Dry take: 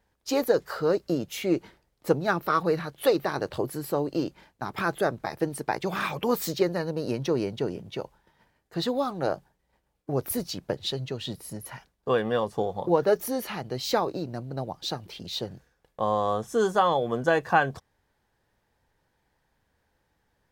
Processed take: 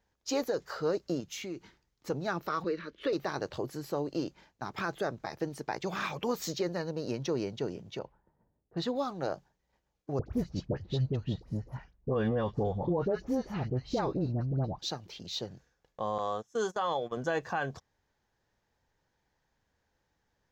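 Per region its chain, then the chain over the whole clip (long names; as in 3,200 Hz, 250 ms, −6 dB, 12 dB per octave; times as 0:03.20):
0:01.20–0:02.10: parametric band 590 Hz −8 dB 0.82 octaves + downward compressor 3 to 1, threshold −32 dBFS
0:02.64–0:03.13: low-pass filter 3,500 Hz + phaser with its sweep stopped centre 320 Hz, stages 4 + multiband upward and downward compressor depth 70%
0:07.99–0:08.96: low-pass that shuts in the quiet parts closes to 490 Hz, open at −28.5 dBFS + bass and treble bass +2 dB, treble −6 dB
0:10.19–0:14.79: RIAA equalisation playback + all-pass dispersion highs, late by 74 ms, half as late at 1,200 Hz + one half of a high-frequency compander decoder only
0:16.18–0:17.17: low-shelf EQ 310 Hz −7 dB + noise gate −34 dBFS, range −19 dB
whole clip: high shelf with overshoot 7,800 Hz −6 dB, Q 3; brickwall limiter −16 dBFS; level −5.5 dB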